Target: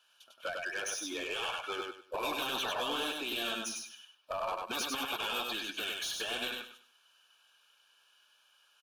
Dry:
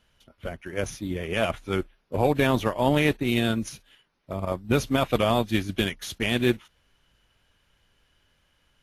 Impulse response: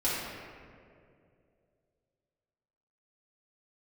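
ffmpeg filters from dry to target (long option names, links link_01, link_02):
-filter_complex "[0:a]highpass=1100,afftdn=noise_reduction=15:noise_floor=-42,afftfilt=real='re*lt(hypot(re,im),0.0708)':imag='im*lt(hypot(re,im),0.0708)':win_size=1024:overlap=0.75,asplit=2[link_01][link_02];[link_02]acompressor=threshold=-50dB:ratio=8,volume=0.5dB[link_03];[link_01][link_03]amix=inputs=2:normalize=0,alimiter=level_in=6.5dB:limit=-24dB:level=0:latency=1:release=108,volume=-6.5dB,acontrast=23,asoftclip=type=tanh:threshold=-35.5dB,asuperstop=centerf=2000:order=4:qfactor=3.4,aecho=1:1:99|198|297|396:0.708|0.184|0.0479|0.0124,adynamicequalizer=threshold=0.00282:dfrequency=3900:dqfactor=0.7:tfrequency=3900:tqfactor=0.7:attack=5:release=100:ratio=0.375:range=2:mode=cutabove:tftype=highshelf,volume=5.5dB"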